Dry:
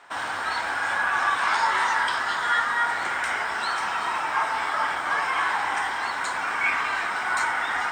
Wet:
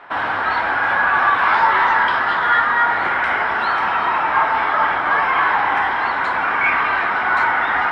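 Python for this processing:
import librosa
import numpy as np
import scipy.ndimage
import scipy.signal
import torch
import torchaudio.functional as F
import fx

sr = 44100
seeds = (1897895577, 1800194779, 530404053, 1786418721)

p1 = 10.0 ** (-23.0 / 20.0) * np.tanh(x / 10.0 ** (-23.0 / 20.0))
p2 = x + (p1 * 10.0 ** (-4.0 / 20.0))
p3 = fx.air_absorb(p2, sr, metres=390.0)
y = p3 * 10.0 ** (7.5 / 20.0)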